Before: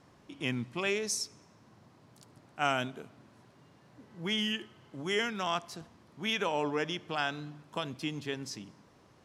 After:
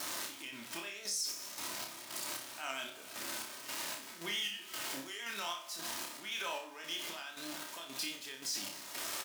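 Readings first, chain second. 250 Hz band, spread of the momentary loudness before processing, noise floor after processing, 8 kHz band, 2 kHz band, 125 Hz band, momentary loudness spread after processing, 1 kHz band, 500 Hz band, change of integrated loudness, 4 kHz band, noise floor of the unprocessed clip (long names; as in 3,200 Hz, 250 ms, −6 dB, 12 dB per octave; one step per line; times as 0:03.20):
−12.5 dB, 17 LU, −51 dBFS, +3.0 dB, −5.5 dB, −19.5 dB, 7 LU, −8.0 dB, −12.5 dB, −5.5 dB, −2.0 dB, −62 dBFS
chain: converter with a step at zero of −40.5 dBFS
comb filter 3.2 ms, depth 46%
downward compressor 12 to 1, threshold −38 dBFS, peak gain reduction 16 dB
square-wave tremolo 1.9 Hz, depth 65%, duty 50%
pitch vibrato 6.2 Hz 55 cents
flanger 0.75 Hz, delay 9.8 ms, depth 9.8 ms, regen −86%
high-pass filter 1,200 Hz 6 dB per octave
high-shelf EQ 3,900 Hz +8 dB
brickwall limiter −39 dBFS, peak gain reduction 10.5 dB
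on a send: flutter between parallel walls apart 5.1 metres, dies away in 0.38 s
on the sum: level +10 dB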